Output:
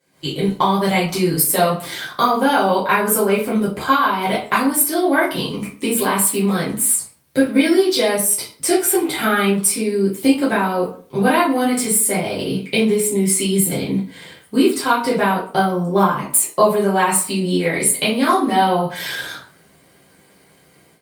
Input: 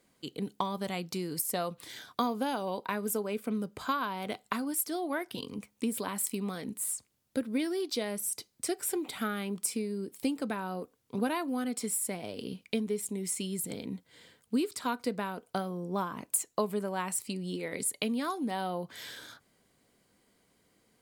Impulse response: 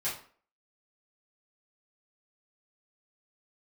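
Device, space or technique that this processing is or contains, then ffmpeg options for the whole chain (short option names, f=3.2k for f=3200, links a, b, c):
far-field microphone of a smart speaker: -filter_complex "[0:a]asplit=3[a][b][c];[a]afade=t=out:st=1.95:d=0.02[d];[b]adynamicequalizer=threshold=0.002:dfrequency=1400:dqfactor=6.7:tfrequency=1400:tqfactor=6.7:attack=5:release=100:ratio=0.375:range=3:mode=boostabove:tftype=bell,afade=t=in:st=1.95:d=0.02,afade=t=out:st=3.31:d=0.02[e];[c]afade=t=in:st=3.31:d=0.02[f];[d][e][f]amix=inputs=3:normalize=0[g];[1:a]atrim=start_sample=2205[h];[g][h]afir=irnorm=-1:irlink=0,highpass=80,dynaudnorm=f=130:g=3:m=15dB" -ar 48000 -c:a libopus -b:a 48k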